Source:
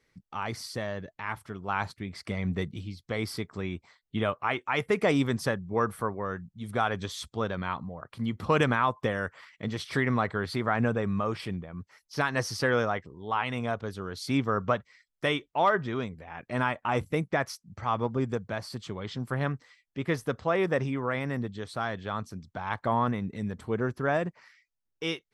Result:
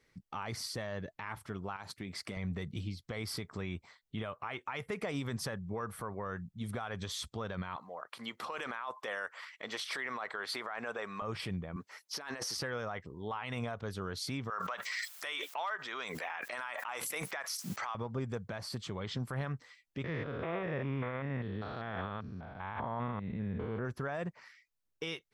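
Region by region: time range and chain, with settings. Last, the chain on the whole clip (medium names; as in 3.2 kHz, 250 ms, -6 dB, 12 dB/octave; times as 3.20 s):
1.76–2.37 s: high-pass 160 Hz 6 dB/octave + treble shelf 5.3 kHz +5 dB + compression, threshold -36 dBFS
7.76–11.22 s: high-pass 650 Hz + compressor with a negative ratio -34 dBFS
11.76–12.57 s: high-pass 340 Hz + compressor with a negative ratio -39 dBFS
14.50–17.95 s: high-pass 960 Hz + treble shelf 9.7 kHz +6.5 dB + swell ahead of each attack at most 24 dB/s
20.04–23.85 s: spectrogram pixelated in time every 200 ms + low-pass 3.5 kHz 24 dB/octave
whole clip: dynamic bell 300 Hz, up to -5 dB, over -40 dBFS, Q 1.4; compression, threshold -30 dBFS; peak limiter -28 dBFS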